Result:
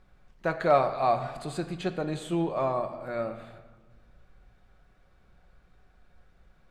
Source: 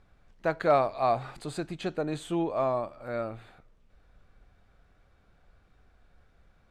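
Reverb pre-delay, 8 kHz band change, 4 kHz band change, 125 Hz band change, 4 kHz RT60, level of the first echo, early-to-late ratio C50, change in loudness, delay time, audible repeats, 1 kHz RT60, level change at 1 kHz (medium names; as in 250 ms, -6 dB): 5 ms, +0.5 dB, +1.0 dB, +2.5 dB, 1.1 s, no echo, 10.5 dB, +1.0 dB, no echo, no echo, 1.4 s, +1.5 dB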